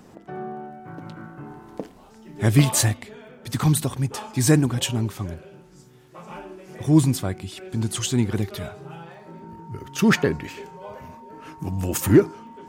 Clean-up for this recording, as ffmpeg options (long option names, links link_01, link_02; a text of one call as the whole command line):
ffmpeg -i in.wav -af "adeclick=threshold=4,bandreject=frequency=920:width=30" out.wav